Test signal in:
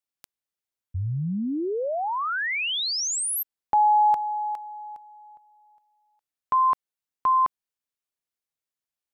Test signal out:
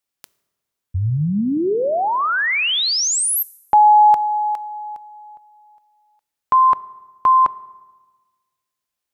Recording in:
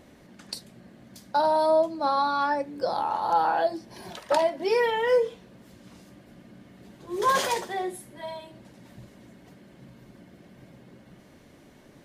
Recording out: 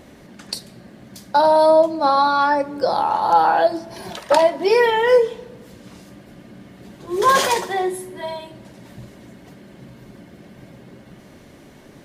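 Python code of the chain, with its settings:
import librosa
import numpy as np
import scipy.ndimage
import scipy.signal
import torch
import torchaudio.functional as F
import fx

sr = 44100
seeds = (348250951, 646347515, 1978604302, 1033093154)

y = fx.rev_fdn(x, sr, rt60_s=1.3, lf_ratio=1.25, hf_ratio=0.65, size_ms=15.0, drr_db=17.5)
y = F.gain(torch.from_numpy(y), 8.0).numpy()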